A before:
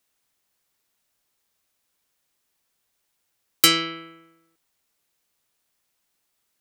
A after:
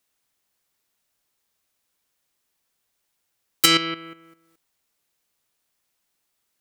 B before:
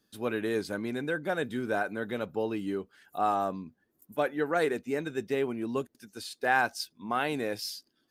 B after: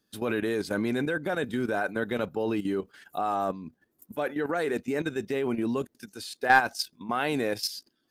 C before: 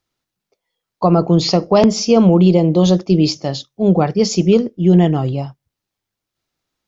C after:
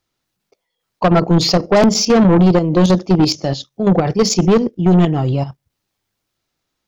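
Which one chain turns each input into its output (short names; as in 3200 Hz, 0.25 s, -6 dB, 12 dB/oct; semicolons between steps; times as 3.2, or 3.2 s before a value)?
level quantiser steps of 12 dB; soft clip -15.5 dBFS; gain +8.5 dB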